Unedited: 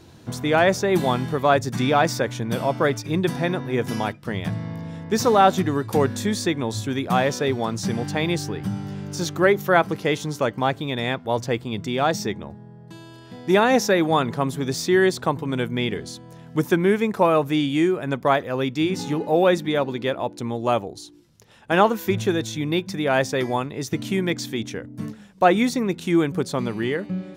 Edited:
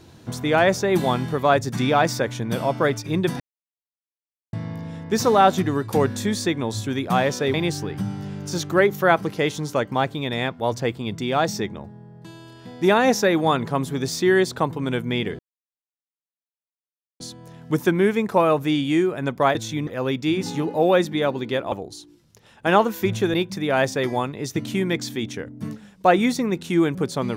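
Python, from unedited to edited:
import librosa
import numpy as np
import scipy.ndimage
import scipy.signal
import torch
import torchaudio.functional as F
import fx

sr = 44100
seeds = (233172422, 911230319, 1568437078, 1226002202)

y = fx.edit(x, sr, fx.silence(start_s=3.4, length_s=1.13),
    fx.cut(start_s=7.54, length_s=0.66),
    fx.insert_silence(at_s=16.05, length_s=1.81),
    fx.cut(start_s=20.25, length_s=0.52),
    fx.move(start_s=22.39, length_s=0.32, to_s=18.4), tone=tone)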